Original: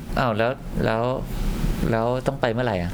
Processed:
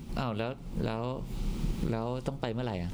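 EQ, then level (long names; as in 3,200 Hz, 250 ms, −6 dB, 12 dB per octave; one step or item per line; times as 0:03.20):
graphic EQ with 15 bands 630 Hz −7 dB, 1,600 Hz −10 dB, 16,000 Hz −10 dB
−8.0 dB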